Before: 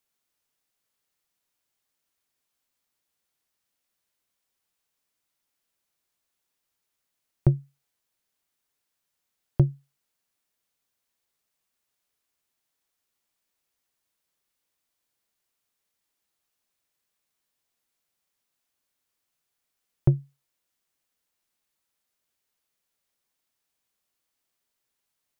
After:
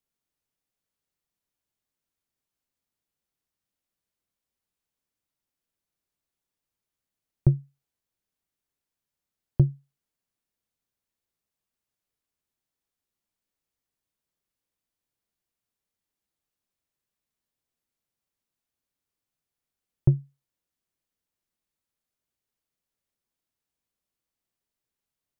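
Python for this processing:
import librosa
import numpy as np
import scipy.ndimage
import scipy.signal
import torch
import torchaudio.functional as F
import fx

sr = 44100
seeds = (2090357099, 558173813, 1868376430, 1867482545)

y = fx.low_shelf(x, sr, hz=410.0, db=10.0)
y = y * librosa.db_to_amplitude(-8.5)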